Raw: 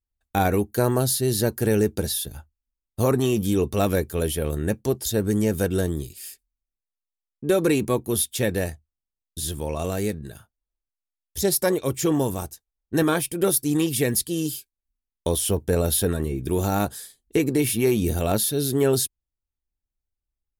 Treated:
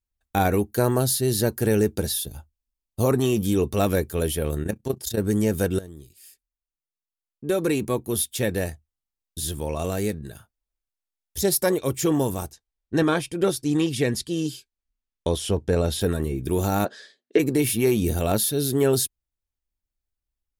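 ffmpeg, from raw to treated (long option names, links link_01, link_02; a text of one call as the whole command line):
ffmpeg -i in.wav -filter_complex "[0:a]asettb=1/sr,asplit=3[link_01][link_02][link_03];[link_01]atrim=end=2.204[link_04];[link_02]atrim=start=2.2:end=3.1,asetpts=PTS-STARTPTS,afade=type=in:duration=0.004:curve=qsin,afade=type=out:start_time=0.896:duration=0.004:curve=qsin,equalizer=frequency=1700:width_type=o:width=0.83:gain=-7[link_05];[link_03]atrim=start=3.096[link_06];[link_04][link_05]acrossfade=duration=0.004:curve1=hsin:curve2=qsin[link_07];[link_07][link_06]acrossfade=duration=0.004:curve1=qsin:curve2=hsin,asettb=1/sr,asplit=3[link_08][link_09][link_10];[link_08]atrim=end=4.634[link_11];[link_09]atrim=start=4.63:end=5.19,asetpts=PTS-STARTPTS,afade=type=in:duration=0.004:curve=qsin,afade=type=out:start_time=0.556:duration=0.004:curve=qsin,tremolo=f=29:d=0.788[link_12];[link_10]atrim=start=5.186[link_13];[link_11][link_12]acrossfade=duration=0.004:curve1=hsin:curve2=qsin[link_14];[link_14][link_13]acrossfade=duration=0.004:curve1=qsin:curve2=hsin,asplit=3[link_15][link_16][link_17];[link_15]afade=type=out:start_time=12.51:duration=0.02[link_18];[link_16]lowpass=6300,afade=type=in:start_time=12.51:duration=0.02,afade=type=out:start_time=16:duration=0.02[link_19];[link_17]afade=type=in:start_time=16:duration=0.02[link_20];[link_18][link_19][link_20]amix=inputs=3:normalize=0,asplit=3[link_21][link_22][link_23];[link_21]afade=type=out:start_time=16.84:duration=0.02[link_24];[link_22]highpass=frequency=220:width=0.5412,highpass=frequency=220:width=1.3066,equalizer=frequency=410:width_type=q:width=4:gain=4,equalizer=frequency=590:width_type=q:width=4:gain=9,equalizer=frequency=860:width_type=q:width=4:gain=-5,equalizer=frequency=1700:width_type=q:width=4:gain=8,lowpass=frequency=5100:width=0.5412,lowpass=frequency=5100:width=1.3066,afade=type=in:start_time=16.84:duration=0.02,afade=type=out:start_time=17.38:duration=0.02[link_25];[link_23]afade=type=in:start_time=17.38:duration=0.02[link_26];[link_24][link_25][link_26]amix=inputs=3:normalize=0,asplit=2[link_27][link_28];[link_27]atrim=end=5.79,asetpts=PTS-STARTPTS,afade=type=out:start_time=5.786:duration=0.004:curve=hsin:silence=0.133352[link_29];[link_28]atrim=start=5.79,asetpts=PTS-STARTPTS,afade=type=in:duration=3.96:curve=qsin:silence=0.133352[link_30];[link_29][link_30]concat=n=2:v=0:a=1" out.wav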